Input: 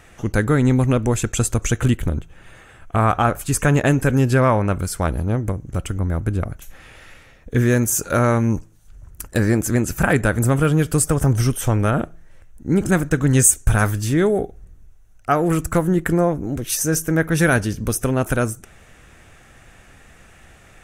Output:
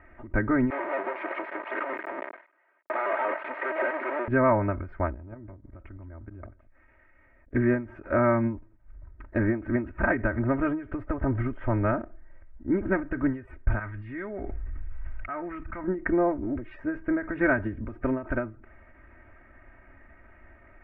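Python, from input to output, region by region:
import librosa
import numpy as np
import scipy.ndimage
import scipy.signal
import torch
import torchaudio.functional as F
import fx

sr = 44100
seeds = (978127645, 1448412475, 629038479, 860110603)

y = fx.chain(x, sr, fx.clip_1bit(),
    fx.highpass(hz=410.0, slope=24),
    fx.vibrato_shape(shape='square', rate_hz=5.3, depth_cents=160.0), at=(0.7, 4.28))
y = fx.chain(y, sr, fx.level_steps(step_db=18),
    fx.echo_single(ms=169, db=-20.0), at=(5.14, 7.54))
y = fx.chain(y, sr, fx.tone_stack(knobs='5-5-5'),
    fx.env_flatten(amount_pct=100), at=(13.79, 15.84))
y = scipy.signal.sosfilt(scipy.signal.ellip(4, 1.0, 70, 2100.0, 'lowpass', fs=sr, output='sos'), y)
y = y + 0.9 * np.pad(y, (int(3.2 * sr / 1000.0), 0))[:len(y)]
y = fx.end_taper(y, sr, db_per_s=150.0)
y = y * 10.0 ** (-7.0 / 20.0)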